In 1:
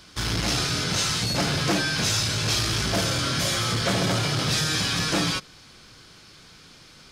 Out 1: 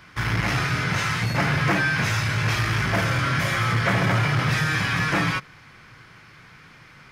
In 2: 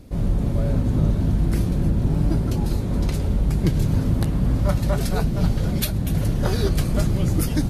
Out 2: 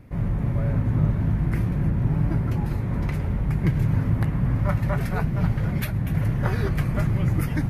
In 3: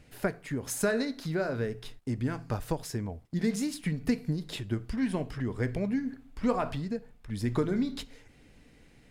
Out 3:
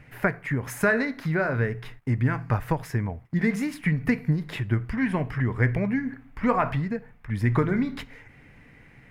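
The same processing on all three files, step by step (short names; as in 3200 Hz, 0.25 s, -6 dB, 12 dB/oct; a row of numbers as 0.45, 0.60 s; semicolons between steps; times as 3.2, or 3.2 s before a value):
graphic EQ 125/1000/2000/4000/8000 Hz +9/+6/+12/-7/-7 dB; normalise peaks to -9 dBFS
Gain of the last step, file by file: -3.0, -7.0, +1.5 dB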